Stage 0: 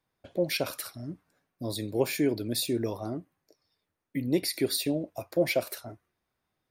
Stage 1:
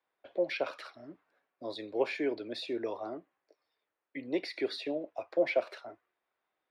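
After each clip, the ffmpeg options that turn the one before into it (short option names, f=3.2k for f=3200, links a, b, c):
-filter_complex "[0:a]lowpass=6.1k,acrossover=split=350 3800:gain=0.0631 1 0.0891[a][b][c];[a][b][c]amix=inputs=3:normalize=0,acrossover=split=180|2100[d][e][f];[f]alimiter=level_in=7.5dB:limit=-24dB:level=0:latency=1:release=227,volume=-7.5dB[g];[d][e][g]amix=inputs=3:normalize=0"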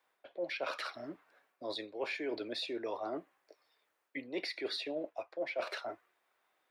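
-af "lowshelf=f=390:g=-8,areverse,acompressor=threshold=-44dB:ratio=6,areverse,volume=8.5dB"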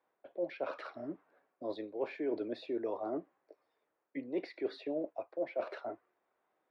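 -af "bandpass=f=250:t=q:w=0.5:csg=0,volume=4dB"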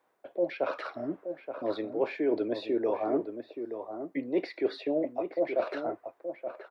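-filter_complex "[0:a]asplit=2[a][b];[b]adelay=874.6,volume=-8dB,highshelf=f=4k:g=-19.7[c];[a][c]amix=inputs=2:normalize=0,volume=7.5dB"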